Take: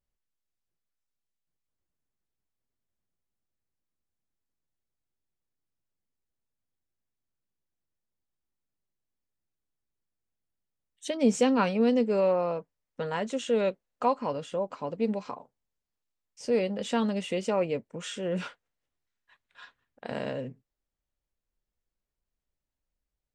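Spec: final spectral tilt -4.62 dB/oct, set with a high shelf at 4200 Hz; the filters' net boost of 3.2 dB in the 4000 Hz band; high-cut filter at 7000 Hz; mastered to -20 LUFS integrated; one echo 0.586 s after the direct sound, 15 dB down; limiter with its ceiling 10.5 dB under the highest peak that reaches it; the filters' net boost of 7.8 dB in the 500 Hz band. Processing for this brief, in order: LPF 7000 Hz; bell 500 Hz +8.5 dB; bell 4000 Hz +3 dB; high shelf 4200 Hz +3 dB; limiter -16 dBFS; echo 0.586 s -15 dB; gain +6.5 dB

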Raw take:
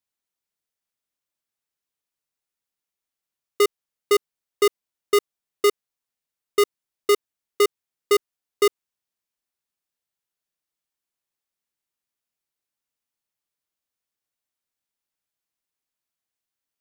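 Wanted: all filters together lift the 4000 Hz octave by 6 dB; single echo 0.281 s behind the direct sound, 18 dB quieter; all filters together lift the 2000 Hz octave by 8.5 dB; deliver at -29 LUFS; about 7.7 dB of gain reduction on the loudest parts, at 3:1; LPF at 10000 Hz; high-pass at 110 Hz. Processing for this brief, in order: HPF 110 Hz; LPF 10000 Hz; bell 2000 Hz +7.5 dB; bell 4000 Hz +5 dB; compressor 3:1, threshold -21 dBFS; echo 0.281 s -18 dB; gain -1.5 dB

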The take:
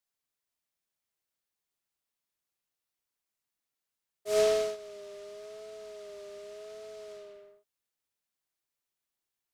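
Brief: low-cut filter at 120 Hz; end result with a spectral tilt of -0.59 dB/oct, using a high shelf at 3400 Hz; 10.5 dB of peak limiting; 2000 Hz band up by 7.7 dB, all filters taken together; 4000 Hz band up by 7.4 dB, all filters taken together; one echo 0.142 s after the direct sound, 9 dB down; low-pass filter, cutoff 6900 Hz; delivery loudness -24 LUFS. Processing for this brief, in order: HPF 120 Hz; LPF 6900 Hz; bell 2000 Hz +6.5 dB; high shelf 3400 Hz +5.5 dB; bell 4000 Hz +4 dB; limiter -24 dBFS; echo 0.142 s -9 dB; gain +15 dB

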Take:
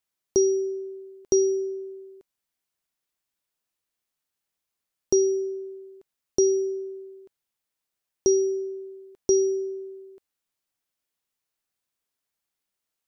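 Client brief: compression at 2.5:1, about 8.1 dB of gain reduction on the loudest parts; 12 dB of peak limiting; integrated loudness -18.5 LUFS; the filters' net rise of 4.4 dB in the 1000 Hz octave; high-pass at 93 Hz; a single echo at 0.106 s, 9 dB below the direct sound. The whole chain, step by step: HPF 93 Hz; bell 1000 Hz +6 dB; compressor 2.5:1, threshold -28 dBFS; limiter -24.5 dBFS; echo 0.106 s -9 dB; gain +13.5 dB

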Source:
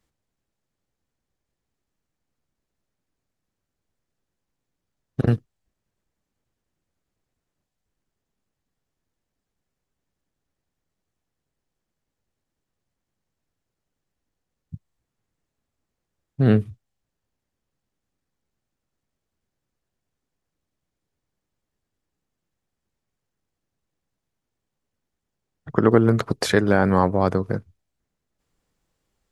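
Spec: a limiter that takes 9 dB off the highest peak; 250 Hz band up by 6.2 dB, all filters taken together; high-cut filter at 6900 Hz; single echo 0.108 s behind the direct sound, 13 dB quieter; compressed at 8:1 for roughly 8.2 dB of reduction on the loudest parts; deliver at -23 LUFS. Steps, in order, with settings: LPF 6900 Hz; bell 250 Hz +8 dB; compressor 8:1, threshold -15 dBFS; limiter -13 dBFS; echo 0.108 s -13 dB; gain +2.5 dB

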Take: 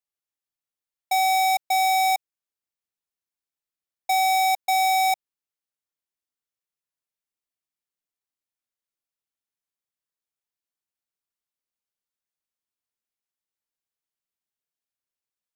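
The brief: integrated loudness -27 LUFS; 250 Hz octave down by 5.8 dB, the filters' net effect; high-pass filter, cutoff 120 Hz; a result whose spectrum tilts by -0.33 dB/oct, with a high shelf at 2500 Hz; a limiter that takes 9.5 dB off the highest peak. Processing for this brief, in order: HPF 120 Hz; bell 250 Hz -8.5 dB; high shelf 2500 Hz -5 dB; gain +5.5 dB; limiter -22.5 dBFS

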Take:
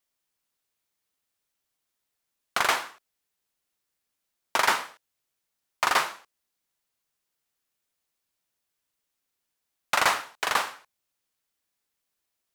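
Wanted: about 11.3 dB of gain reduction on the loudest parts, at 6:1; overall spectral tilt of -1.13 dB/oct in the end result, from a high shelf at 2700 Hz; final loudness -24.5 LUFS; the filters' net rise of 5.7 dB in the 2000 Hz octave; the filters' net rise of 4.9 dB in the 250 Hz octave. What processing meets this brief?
bell 250 Hz +6.5 dB; bell 2000 Hz +5 dB; high shelf 2700 Hz +5 dB; compressor 6:1, threshold -27 dBFS; gain +8 dB

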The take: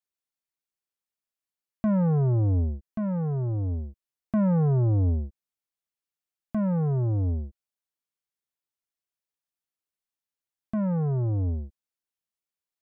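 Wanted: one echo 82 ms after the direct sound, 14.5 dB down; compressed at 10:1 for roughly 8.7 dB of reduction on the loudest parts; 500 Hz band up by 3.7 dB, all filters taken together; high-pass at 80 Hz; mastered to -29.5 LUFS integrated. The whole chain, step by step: HPF 80 Hz; bell 500 Hz +4.5 dB; compressor 10:1, threshold -27 dBFS; echo 82 ms -14.5 dB; gain +3.5 dB

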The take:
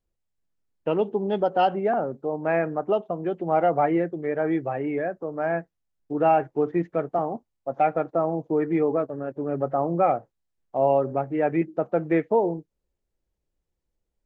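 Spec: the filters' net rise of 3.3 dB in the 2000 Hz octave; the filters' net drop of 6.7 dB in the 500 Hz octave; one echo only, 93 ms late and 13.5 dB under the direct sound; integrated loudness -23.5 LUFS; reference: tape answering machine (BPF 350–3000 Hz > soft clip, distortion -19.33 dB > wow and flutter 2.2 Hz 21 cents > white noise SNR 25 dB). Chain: BPF 350–3000 Hz; bell 500 Hz -8 dB; bell 2000 Hz +5.5 dB; echo 93 ms -13.5 dB; soft clip -17 dBFS; wow and flutter 2.2 Hz 21 cents; white noise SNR 25 dB; gain +7.5 dB

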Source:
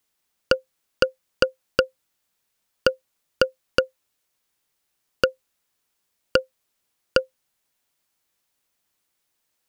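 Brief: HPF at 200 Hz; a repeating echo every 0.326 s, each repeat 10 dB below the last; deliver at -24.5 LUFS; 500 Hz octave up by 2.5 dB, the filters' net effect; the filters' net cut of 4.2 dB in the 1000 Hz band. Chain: HPF 200 Hz; bell 500 Hz +4.5 dB; bell 1000 Hz -8.5 dB; feedback echo 0.326 s, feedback 32%, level -10 dB; gain +1.5 dB

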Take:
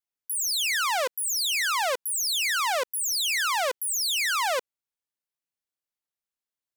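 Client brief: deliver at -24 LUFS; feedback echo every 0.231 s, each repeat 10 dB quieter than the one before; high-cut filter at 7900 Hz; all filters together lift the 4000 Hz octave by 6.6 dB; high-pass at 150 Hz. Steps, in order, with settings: HPF 150 Hz; LPF 7900 Hz; bell 4000 Hz +8.5 dB; feedback echo 0.231 s, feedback 32%, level -10 dB; gain -3 dB

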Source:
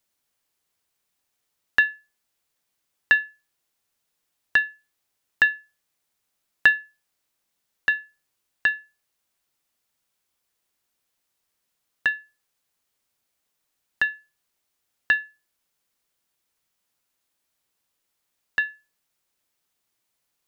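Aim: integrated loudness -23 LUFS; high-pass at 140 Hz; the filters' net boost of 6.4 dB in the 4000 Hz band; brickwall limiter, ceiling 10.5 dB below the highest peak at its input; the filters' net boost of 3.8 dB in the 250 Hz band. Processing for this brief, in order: HPF 140 Hz; bell 250 Hz +5.5 dB; bell 4000 Hz +8.5 dB; gain +3 dB; limiter -8 dBFS

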